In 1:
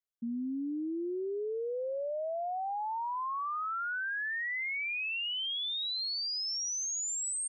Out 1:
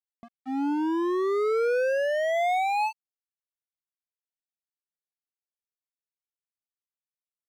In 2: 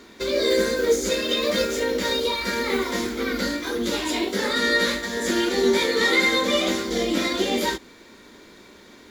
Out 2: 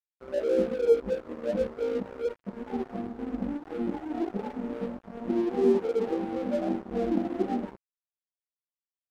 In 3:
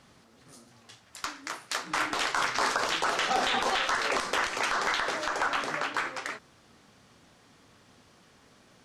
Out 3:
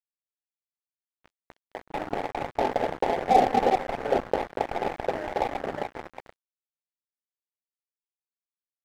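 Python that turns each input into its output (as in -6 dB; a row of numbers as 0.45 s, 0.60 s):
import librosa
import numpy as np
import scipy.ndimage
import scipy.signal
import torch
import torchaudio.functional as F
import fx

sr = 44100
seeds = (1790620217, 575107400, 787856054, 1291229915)

y = scipy.signal.sosfilt(scipy.signal.cheby1(8, 1.0, 860.0, 'lowpass', fs=sr, output='sos'), x)
y = fx.noise_reduce_blind(y, sr, reduce_db=10)
y = np.sign(y) * np.maximum(np.abs(y) - 10.0 ** (-39.5 / 20.0), 0.0)
y = y * 10.0 ** (-30 / 20.0) / np.sqrt(np.mean(np.square(y)))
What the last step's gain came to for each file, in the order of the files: +17.0 dB, 0.0 dB, +13.0 dB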